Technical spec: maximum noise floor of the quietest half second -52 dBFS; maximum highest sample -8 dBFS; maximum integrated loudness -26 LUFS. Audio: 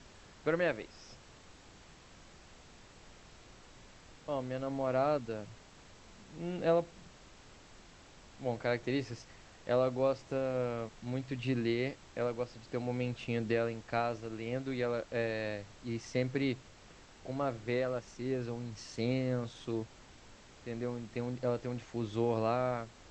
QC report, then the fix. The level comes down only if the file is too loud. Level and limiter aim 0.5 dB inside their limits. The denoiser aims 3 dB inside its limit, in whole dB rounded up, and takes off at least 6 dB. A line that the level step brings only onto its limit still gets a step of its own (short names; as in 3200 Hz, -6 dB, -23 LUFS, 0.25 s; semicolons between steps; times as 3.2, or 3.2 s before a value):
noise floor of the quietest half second -57 dBFS: OK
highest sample -17.5 dBFS: OK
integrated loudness -35.5 LUFS: OK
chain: none